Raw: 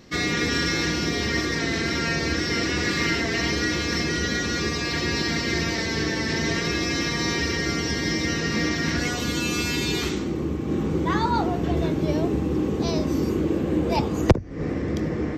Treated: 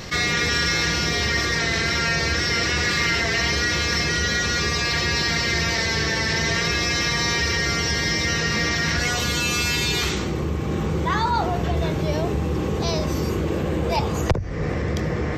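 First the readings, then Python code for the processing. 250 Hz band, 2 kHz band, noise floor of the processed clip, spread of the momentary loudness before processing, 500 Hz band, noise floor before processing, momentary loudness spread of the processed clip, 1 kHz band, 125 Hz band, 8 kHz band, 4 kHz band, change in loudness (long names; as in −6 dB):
−3.0 dB, +4.5 dB, −25 dBFS, 3 LU, 0.0 dB, −28 dBFS, 5 LU, +3.5 dB, +2.5 dB, +5.0 dB, +5.0 dB, +2.5 dB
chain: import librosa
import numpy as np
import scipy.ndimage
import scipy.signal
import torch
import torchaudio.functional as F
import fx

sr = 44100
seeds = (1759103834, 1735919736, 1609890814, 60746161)

y = fx.peak_eq(x, sr, hz=280.0, db=-12.5, octaves=0.96)
y = fx.env_flatten(y, sr, amount_pct=50)
y = y * librosa.db_to_amplitude(-2.0)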